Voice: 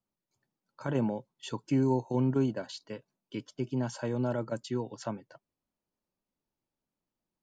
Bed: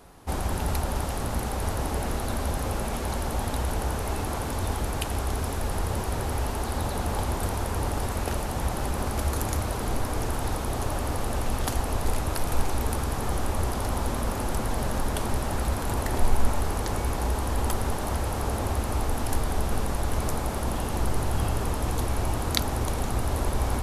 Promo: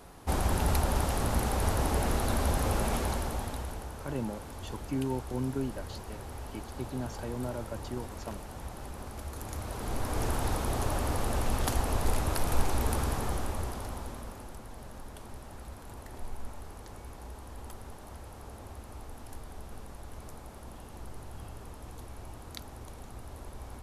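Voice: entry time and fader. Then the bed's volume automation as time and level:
3.20 s, -5.5 dB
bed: 2.96 s 0 dB
3.91 s -13.5 dB
9.32 s -13.5 dB
10.25 s -2 dB
13.07 s -2 dB
14.61 s -18 dB

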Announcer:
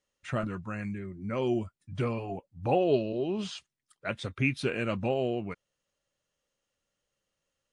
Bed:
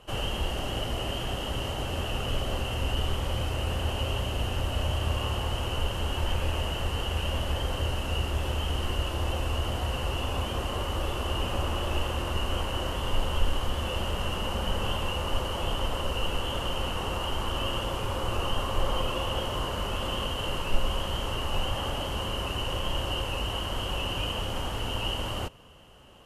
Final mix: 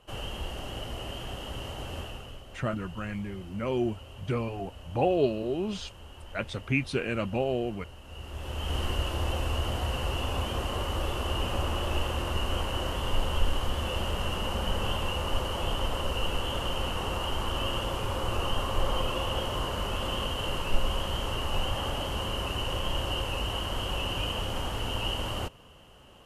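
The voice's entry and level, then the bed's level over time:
2.30 s, +0.5 dB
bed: 1.99 s -6 dB
2.43 s -17.5 dB
8.02 s -17.5 dB
8.76 s -0.5 dB

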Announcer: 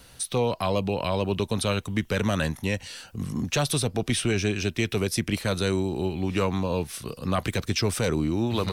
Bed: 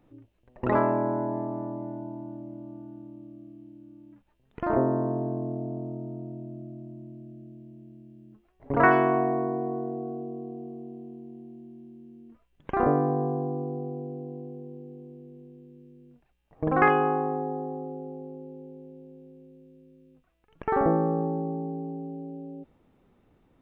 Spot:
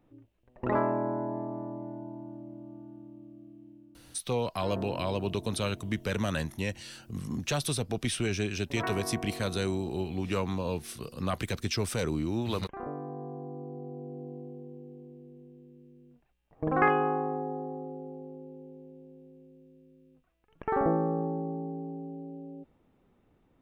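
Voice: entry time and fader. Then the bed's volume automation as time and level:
3.95 s, -5.5 dB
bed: 3.72 s -4 dB
4.4 s -15.5 dB
12.91 s -15.5 dB
14.25 s -3.5 dB

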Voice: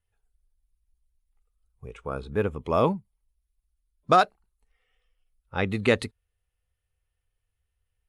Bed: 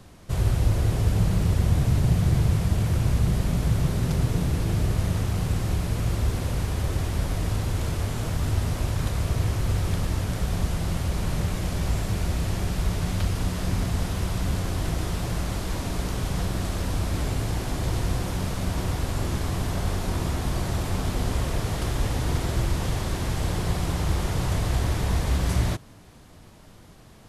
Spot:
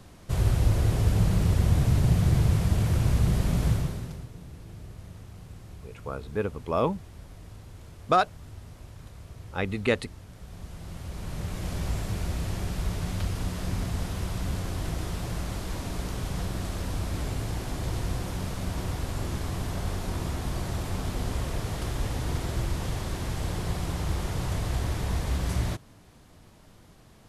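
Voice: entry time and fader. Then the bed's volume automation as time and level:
4.00 s, -3.0 dB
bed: 3.7 s -1 dB
4.3 s -19.5 dB
10.32 s -19.5 dB
11.71 s -4.5 dB

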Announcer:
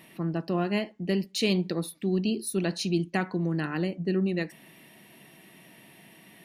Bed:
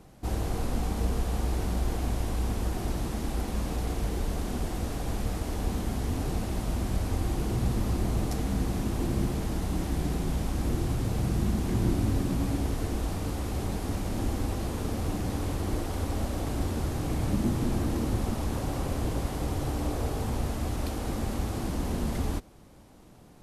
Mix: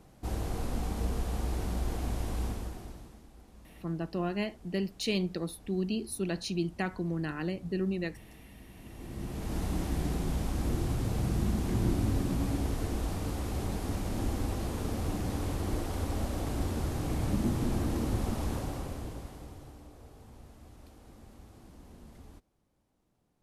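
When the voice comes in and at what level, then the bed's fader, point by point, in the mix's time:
3.65 s, -5.0 dB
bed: 2.45 s -4 dB
3.29 s -24 dB
8.67 s -24 dB
9.58 s -2.5 dB
18.51 s -2.5 dB
19.9 s -22 dB

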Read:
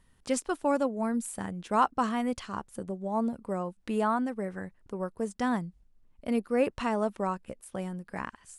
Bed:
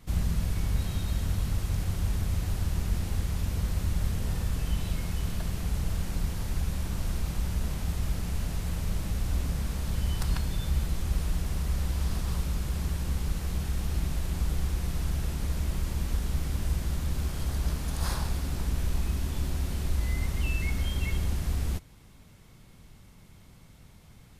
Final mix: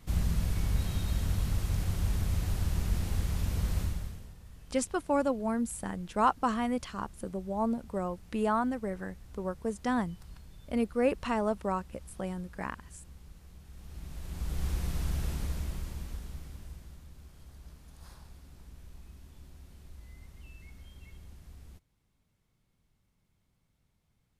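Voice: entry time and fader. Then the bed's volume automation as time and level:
4.45 s, -1.0 dB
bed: 3.81 s -1.5 dB
4.36 s -21.5 dB
13.63 s -21.5 dB
14.69 s -2.5 dB
15.34 s -2.5 dB
17.12 s -21.5 dB

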